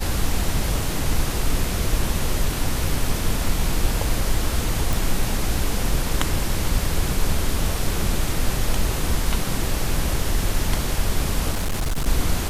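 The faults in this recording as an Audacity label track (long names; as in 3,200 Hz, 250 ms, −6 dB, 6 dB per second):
4.930000	4.930000	click
11.520000	12.080000	clipping −19 dBFS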